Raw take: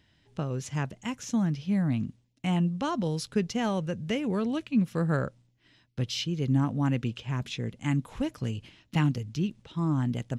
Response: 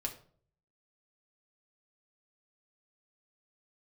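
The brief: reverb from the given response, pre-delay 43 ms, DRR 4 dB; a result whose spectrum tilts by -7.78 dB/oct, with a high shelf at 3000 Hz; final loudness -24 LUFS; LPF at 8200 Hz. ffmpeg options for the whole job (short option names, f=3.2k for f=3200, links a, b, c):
-filter_complex "[0:a]lowpass=8.2k,highshelf=f=3k:g=-8.5,asplit=2[a][b];[1:a]atrim=start_sample=2205,adelay=43[c];[b][c]afir=irnorm=-1:irlink=0,volume=-4.5dB[d];[a][d]amix=inputs=2:normalize=0,volume=4.5dB"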